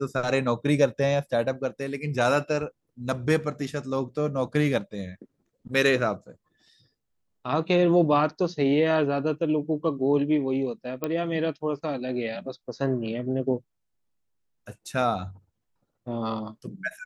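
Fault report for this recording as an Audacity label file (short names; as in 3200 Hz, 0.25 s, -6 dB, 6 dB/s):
11.040000	11.040000	pop -14 dBFS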